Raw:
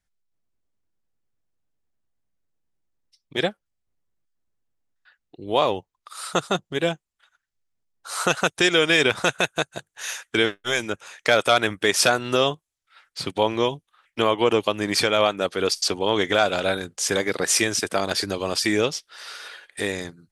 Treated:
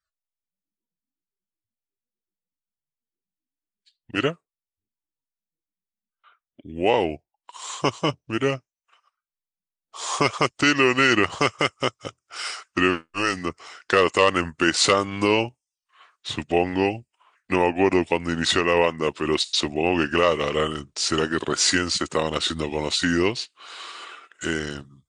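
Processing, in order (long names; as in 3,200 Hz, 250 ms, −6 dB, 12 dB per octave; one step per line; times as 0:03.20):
speed change −19%
noise reduction from a noise print of the clip's start 19 dB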